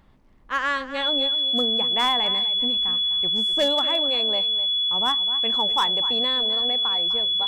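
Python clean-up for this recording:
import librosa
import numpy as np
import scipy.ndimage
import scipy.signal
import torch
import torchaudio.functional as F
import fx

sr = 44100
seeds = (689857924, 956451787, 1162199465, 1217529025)

y = fx.fix_declip(x, sr, threshold_db=-14.5)
y = fx.notch(y, sr, hz=3400.0, q=30.0)
y = fx.fix_echo_inverse(y, sr, delay_ms=253, level_db=-13.5)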